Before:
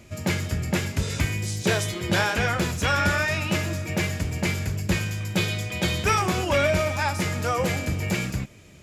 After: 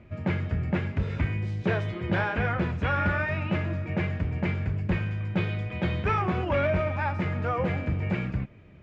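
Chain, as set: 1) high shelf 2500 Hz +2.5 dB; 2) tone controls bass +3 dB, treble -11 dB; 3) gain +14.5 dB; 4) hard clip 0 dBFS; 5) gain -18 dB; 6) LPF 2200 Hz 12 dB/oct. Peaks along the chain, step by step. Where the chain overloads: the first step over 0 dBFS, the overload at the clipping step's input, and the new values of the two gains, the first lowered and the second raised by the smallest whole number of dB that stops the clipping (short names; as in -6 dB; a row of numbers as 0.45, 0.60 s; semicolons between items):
-10.0, -8.5, +6.0, 0.0, -18.0, -17.5 dBFS; step 3, 6.0 dB; step 3 +8.5 dB, step 5 -12 dB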